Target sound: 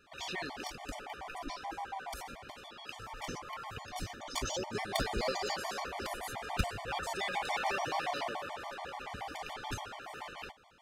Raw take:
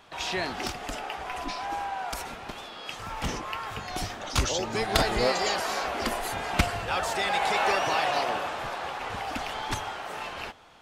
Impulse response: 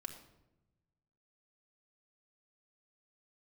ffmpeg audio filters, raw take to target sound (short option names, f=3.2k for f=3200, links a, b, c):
-af "aeval=exprs='clip(val(0),-1,0.0891)':c=same,afftfilt=real='re*gt(sin(2*PI*7*pts/sr)*(1-2*mod(floor(b*sr/1024/600),2)),0)':imag='im*gt(sin(2*PI*7*pts/sr)*(1-2*mod(floor(b*sr/1024/600),2)),0)':win_size=1024:overlap=0.75,volume=-5.5dB"